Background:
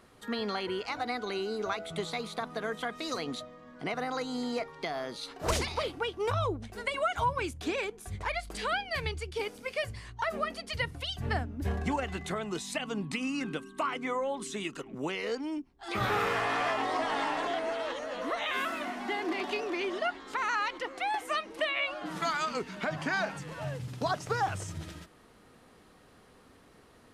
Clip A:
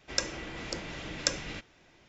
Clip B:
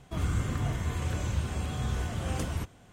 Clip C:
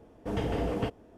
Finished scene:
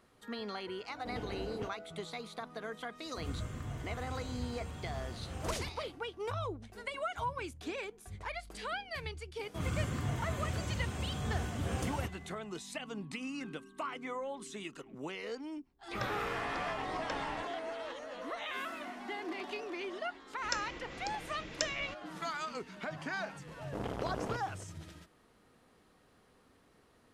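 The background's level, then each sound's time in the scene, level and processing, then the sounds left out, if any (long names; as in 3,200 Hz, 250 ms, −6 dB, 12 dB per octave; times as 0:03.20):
background −7.5 dB
0:00.79: mix in C −11.5 dB
0:03.05: mix in B −11 dB
0:09.43: mix in B −3.5 dB + high-pass filter 83 Hz
0:15.83: mix in A −6 dB + low-pass filter 2,200 Hz
0:20.34: mix in A −7 dB
0:23.47: mix in C −2 dB + saturating transformer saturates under 960 Hz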